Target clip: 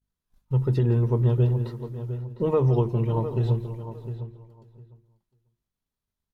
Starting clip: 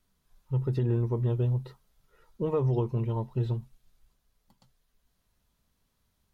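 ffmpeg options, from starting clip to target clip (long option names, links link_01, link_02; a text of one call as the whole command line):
ffmpeg -i in.wav -filter_complex "[0:a]asplit=2[link_01][link_02];[link_02]aecho=0:1:168|542:0.158|0.112[link_03];[link_01][link_03]amix=inputs=2:normalize=0,aeval=exprs='val(0)+0.00112*(sin(2*PI*50*n/s)+sin(2*PI*2*50*n/s)/2+sin(2*PI*3*50*n/s)/3+sin(2*PI*4*50*n/s)/4+sin(2*PI*5*50*n/s)/5)':channel_layout=same,agate=range=-33dB:threshold=-47dB:ratio=3:detection=peak,bandreject=frequency=50:width_type=h:width=6,bandreject=frequency=100:width_type=h:width=6,bandreject=frequency=150:width_type=h:width=6,bandreject=frequency=200:width_type=h:width=6,bandreject=frequency=250:width_type=h:width=6,bandreject=frequency=300:width_type=h:width=6,bandreject=frequency=350:width_type=h:width=6,asplit=2[link_04][link_05];[link_05]adelay=705,lowpass=frequency=2500:poles=1,volume=-11dB,asplit=2[link_06][link_07];[link_07]adelay=705,lowpass=frequency=2500:poles=1,volume=0.16[link_08];[link_06][link_08]amix=inputs=2:normalize=0[link_09];[link_04][link_09]amix=inputs=2:normalize=0,volume=5.5dB" out.wav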